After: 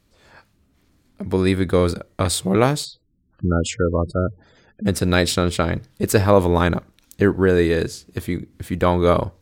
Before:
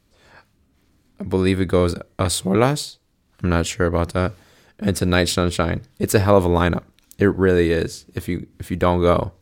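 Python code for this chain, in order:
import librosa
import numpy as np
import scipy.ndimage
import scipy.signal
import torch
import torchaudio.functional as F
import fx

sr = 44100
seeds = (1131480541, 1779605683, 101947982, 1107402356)

y = fx.spec_gate(x, sr, threshold_db=-15, keep='strong', at=(2.84, 4.85), fade=0.02)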